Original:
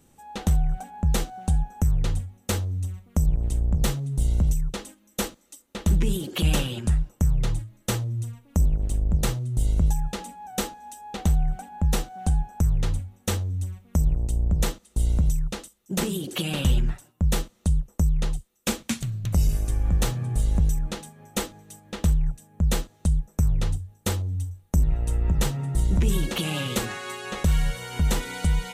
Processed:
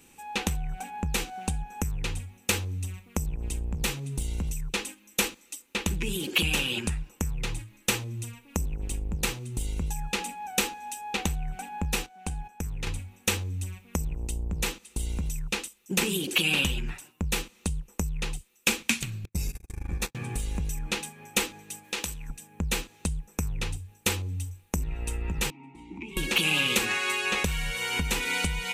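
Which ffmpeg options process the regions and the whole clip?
-filter_complex "[0:a]asettb=1/sr,asplit=3[s0][s1][s2];[s0]atrim=end=12.064[s3];[s1]atrim=start=12.06:end=12.87,asetpts=PTS-STARTPTS,afade=t=in:d=0.004:c=qsin,afade=t=out:st=0.806:d=0.004:c=qsin,agate=range=0.251:threshold=0.0158:ratio=16:release=100:detection=peak,acompressor=threshold=0.0282:ratio=2:attack=3.2:release=140:knee=1:detection=peak[s4];[s2]atrim=start=12.866[s5];[s3][s4]acrossfade=d=0.004:c1=hsin:c2=qsin[s6];[s6][s5]acrossfade=d=0.004:c1=qsin:c2=hsin,asettb=1/sr,asplit=3[s7][s8][s9];[s7]atrim=end=19.254[s10];[s8]atrim=start=19.25:end=20.15,asetpts=PTS-STARTPTS,afade=t=in:d=0.004:c=qsin,afade=t=out:st=0.896:d=0.004:c=qsin,agate=range=0.00282:threshold=0.0891:ratio=16:release=100:detection=peak,bandreject=f=3000:w=5.8[s11];[s9]atrim=start=20.146[s12];[s10][s11]acrossfade=d=0.004:c1=hsin:c2=qsin[s13];[s13][s12]acrossfade=d=0.004:c1=qsin:c2=hsin,asettb=1/sr,asplit=3[s14][s15][s16];[s14]atrim=end=21.844[s17];[s15]atrim=start=21.84:end=22.3,asetpts=PTS-STARTPTS,afade=t=in:d=0.004:c=qsin,afade=t=out:st=0.456:d=0.004:c=qsin,bass=f=250:g=-9,treble=f=4000:g=7,acompressor=threshold=0.0282:ratio=10:attack=3.2:release=140:knee=1:detection=peak[s18];[s16]atrim=start=22.296[s19];[s17][s18]acrossfade=d=0.004:c1=hsin:c2=qsin[s20];[s20][s19]acrossfade=d=0.004:c1=qsin:c2=hsin,asettb=1/sr,asplit=3[s21][s22][s23];[s21]atrim=end=25.504[s24];[s22]atrim=start=25.5:end=26.17,asetpts=PTS-STARTPTS,afade=t=in:d=0.004:c=qsin,afade=t=out:st=0.666:d=0.004:c=qsin,asplit=3[s25][s26][s27];[s25]bandpass=f=300:t=q:w=8,volume=1[s28];[s26]bandpass=f=870:t=q:w=8,volume=0.501[s29];[s27]bandpass=f=2240:t=q:w=8,volume=0.355[s30];[s28][s29][s30]amix=inputs=3:normalize=0,bandreject=f=50:t=h:w=6,bandreject=f=100:t=h:w=6,bandreject=f=150:t=h:w=6,bandreject=f=200:t=h:w=6,bandreject=f=250:t=h:w=6,bandreject=f=300:t=h:w=6,bandreject=f=350:t=h:w=6,bandreject=f=400:t=h:w=6,bandreject=f=450:t=h:w=6[s31];[s23]atrim=start=26.166[s32];[s24][s31]acrossfade=d=0.004:c1=hsin:c2=qsin[s33];[s33][s32]acrossfade=d=0.004:c1=qsin:c2=hsin,equalizer=f=125:t=o:w=0.33:g=-7,equalizer=f=630:t=o:w=0.33:g=-12,equalizer=f=1250:t=o:w=0.33:g=-3,equalizer=f=2500:t=o:w=0.33:g=11,acompressor=threshold=0.0501:ratio=3,lowshelf=f=250:g=-10,volume=2"

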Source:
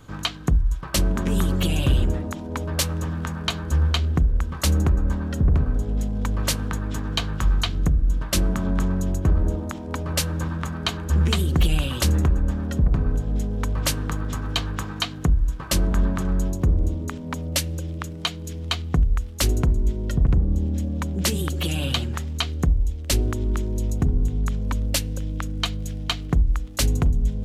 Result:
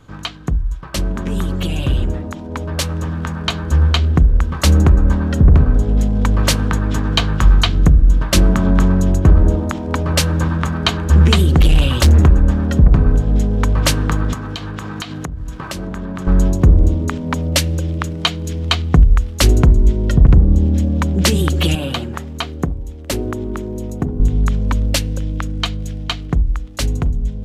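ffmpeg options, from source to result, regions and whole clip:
-filter_complex "[0:a]asettb=1/sr,asplit=3[s0][s1][s2];[s0]atrim=end=11.554[s3];[s1]atrim=start=11.55:end=12.2,asetpts=PTS-STARTPTS,afade=t=in:d=0.004:c=qsin,afade=t=out:st=0.646:d=0.004:c=qsin,asubboost=boost=6:cutoff=130,volume=5.96,asoftclip=hard,volume=0.168[s4];[s2]atrim=start=12.196[s5];[s3][s4]acrossfade=d=0.004:c1=hsin:c2=qsin[s6];[s6][s5]acrossfade=d=0.004:c1=qsin:c2=hsin,asettb=1/sr,asplit=3[s7][s8][s9];[s7]atrim=end=14.334[s10];[s8]atrim=start=14.33:end=16.27,asetpts=PTS-STARTPTS,afade=t=in:d=0.004:c=qsin,afade=t=out:st=1.936:d=0.004:c=qsin,highpass=90,acompressor=threshold=0.0282:ratio=10:attack=3.2:release=140:knee=1:detection=peak[s11];[s9]atrim=start=16.266[s12];[s10][s11]acrossfade=d=0.004:c1=hsin:c2=qsin[s13];[s13][s12]acrossfade=d=0.004:c1=qsin:c2=hsin,asettb=1/sr,asplit=3[s14][s15][s16];[s14]atrim=end=21.754[s17];[s15]atrim=start=21.75:end=24.2,asetpts=PTS-STARTPTS,afade=t=in:d=0.004:c=qsin,afade=t=out:st=2.446:d=0.004:c=qsin,highpass=f=280:p=1,equalizer=f=4300:w=0.38:g=-9[s18];[s16]atrim=start=24.196[s19];[s17][s18]acrossfade=d=0.004:c1=hsin:c2=qsin[s20];[s20][s19]acrossfade=d=0.004:c1=qsin:c2=hsin,highshelf=f=7800:g=-9,dynaudnorm=f=780:g=9:m=3.55,volume=1.12"

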